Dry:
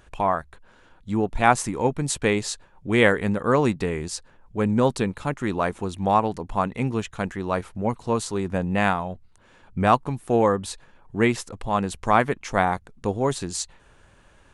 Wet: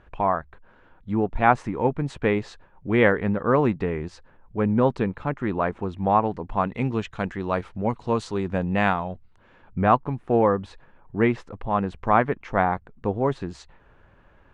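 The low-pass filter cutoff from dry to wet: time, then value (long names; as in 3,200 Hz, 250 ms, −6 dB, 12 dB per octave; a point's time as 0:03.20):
0:06.36 2,100 Hz
0:06.81 4,000 Hz
0:09.02 4,000 Hz
0:09.86 2,000 Hz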